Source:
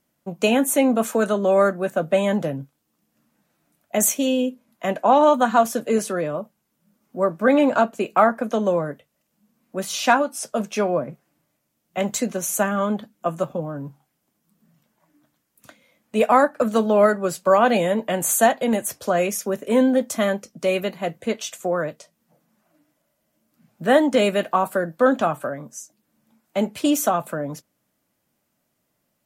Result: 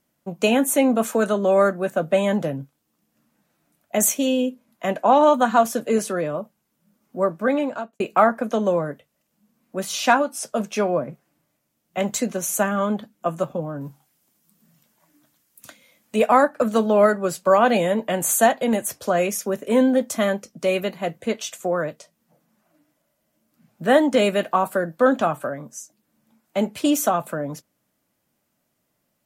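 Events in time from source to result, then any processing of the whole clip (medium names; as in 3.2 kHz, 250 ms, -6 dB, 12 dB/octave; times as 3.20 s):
7.21–8.00 s: fade out
13.81–16.16 s: treble shelf 2.9 kHz +9.5 dB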